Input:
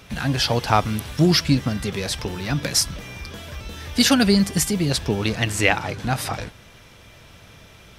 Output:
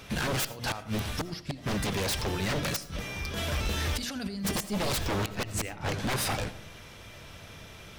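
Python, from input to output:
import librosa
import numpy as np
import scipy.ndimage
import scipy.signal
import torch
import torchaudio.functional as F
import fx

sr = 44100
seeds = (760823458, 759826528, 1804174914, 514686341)

y = fx.hum_notches(x, sr, base_hz=60, count=5)
y = fx.over_compress(y, sr, threshold_db=-29.0, ratio=-1.0, at=(3.36, 4.5), fade=0.02)
y = fx.low_shelf(y, sr, hz=380.0, db=9.0, at=(5.39, 5.89))
y = fx.gate_flip(y, sr, shuts_db=-9.0, range_db=-24)
y = 10.0 ** (-24.0 / 20.0) * (np.abs((y / 10.0 ** (-24.0 / 20.0) + 3.0) % 4.0 - 2.0) - 1.0)
y = fx.rev_freeverb(y, sr, rt60_s=0.58, hf_ratio=0.3, predelay_ms=40, drr_db=14.5)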